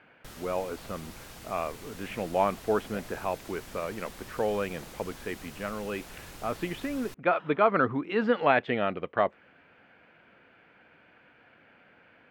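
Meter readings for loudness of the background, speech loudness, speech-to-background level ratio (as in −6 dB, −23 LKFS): −46.0 LKFS, −30.5 LKFS, 15.5 dB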